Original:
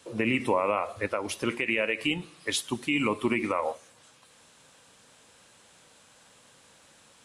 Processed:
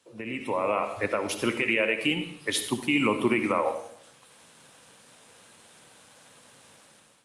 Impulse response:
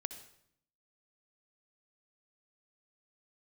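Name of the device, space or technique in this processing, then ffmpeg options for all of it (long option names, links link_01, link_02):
far-field microphone of a smart speaker: -filter_complex "[1:a]atrim=start_sample=2205[link_01];[0:a][link_01]afir=irnorm=-1:irlink=0,highpass=frequency=93:width=0.5412,highpass=frequency=93:width=1.3066,dynaudnorm=framelen=240:gausssize=5:maxgain=15.5dB,volume=-9dB" -ar 48000 -c:a libopus -b:a 48k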